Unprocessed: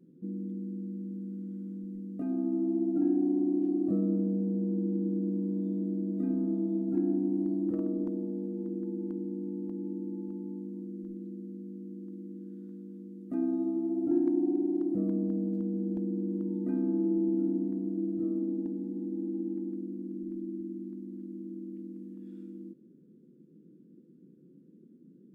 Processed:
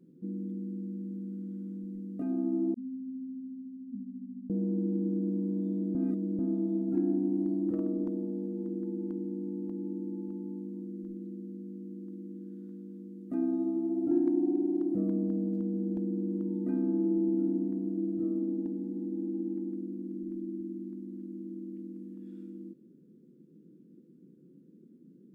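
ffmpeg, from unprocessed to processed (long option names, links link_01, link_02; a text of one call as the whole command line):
ffmpeg -i in.wav -filter_complex "[0:a]asettb=1/sr,asplit=3[link_01][link_02][link_03];[link_01]atrim=end=2.744[link_04];[link_02]atrim=start=2.74:end=4.5,asetpts=PTS-STARTPTS,afade=type=in:duration=0.004:curve=qsin,afade=type=out:start_time=1.756:duration=0.004:curve=qsin,asuperpass=centerf=230:order=20:qfactor=3.8[link_05];[link_03]atrim=start=4.496[link_06];[link_04][link_05]acrossfade=duration=0.004:curve1=hsin:curve2=qsin[link_07];[link_07][link_06]acrossfade=duration=0.004:curve1=qsin:curve2=hsin,asplit=3[link_08][link_09][link_10];[link_08]atrim=end=5.952[link_11];[link_09]atrim=start=5.948:end=6.392,asetpts=PTS-STARTPTS,areverse[link_12];[link_10]atrim=start=6.388[link_13];[link_11][link_12]acrossfade=duration=0.004:curve1=hsin:curve2=hsin[link_14];[link_14][link_13]acrossfade=duration=0.004:curve1=hsin:curve2=hsin" out.wav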